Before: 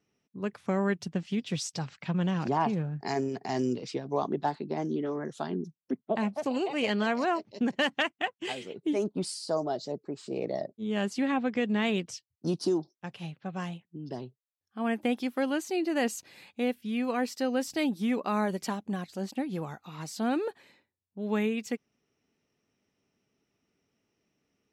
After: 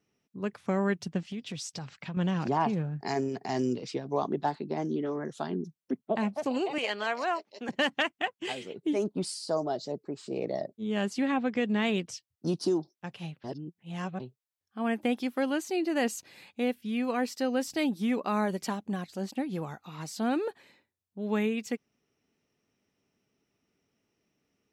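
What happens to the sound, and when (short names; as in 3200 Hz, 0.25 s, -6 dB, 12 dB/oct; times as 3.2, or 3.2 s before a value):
1.2–2.17 compressor 3:1, threshold -35 dBFS
6.78–7.69 HPF 540 Hz
13.44–14.2 reverse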